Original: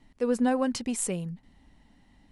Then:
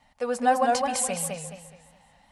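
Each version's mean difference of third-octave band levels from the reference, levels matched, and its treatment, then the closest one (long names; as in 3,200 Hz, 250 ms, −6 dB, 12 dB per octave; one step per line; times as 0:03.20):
7.5 dB: low shelf with overshoot 500 Hz −9.5 dB, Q 3
notch comb filter 330 Hz
echo through a band-pass that steps 128 ms, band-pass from 670 Hz, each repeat 1.4 octaves, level −12 dB
feedback echo with a swinging delay time 210 ms, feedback 33%, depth 114 cents, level −3 dB
level +5 dB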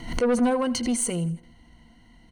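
4.0 dB: EQ curve with evenly spaced ripples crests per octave 1.9, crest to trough 13 dB
soft clipping −20.5 dBFS, distortion −11 dB
repeating echo 82 ms, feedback 47%, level −19 dB
background raised ahead of every attack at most 90 dB per second
level +3.5 dB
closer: second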